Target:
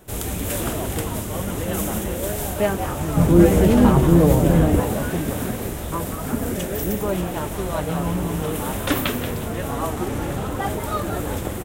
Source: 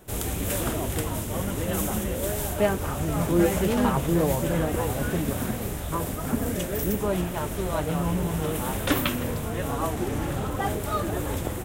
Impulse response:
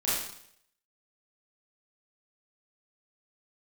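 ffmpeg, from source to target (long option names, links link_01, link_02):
-filter_complex "[0:a]asettb=1/sr,asplit=3[link_01][link_02][link_03];[link_01]atrim=end=3.174[link_04];[link_02]atrim=start=3.17:end=4.8,asetpts=PTS-STARTPTS,afade=type=in:duration=0.004:curve=qsin,afade=type=out:start_time=1.626:duration=0.004:curve=qsin,lowshelf=frequency=370:gain=10[link_05];[link_03]atrim=start=4.796[link_06];[link_04][link_05]acrossfade=duration=0.004:curve1=hsin:curve2=qsin[link_07];[link_07][link_06]acrossfade=duration=0.004:curve1=qsin:curve2=hsin,asplit=5[link_08][link_09][link_10][link_11][link_12];[link_09]adelay=181,afreqshift=130,volume=-10dB[link_13];[link_10]adelay=362,afreqshift=260,volume=-19.6dB[link_14];[link_11]adelay=543,afreqshift=390,volume=-29.3dB[link_15];[link_12]adelay=724,afreqshift=520,volume=-38.9dB[link_16];[link_08][link_13][link_14][link_15][link_16]amix=inputs=5:normalize=0,volume=2dB"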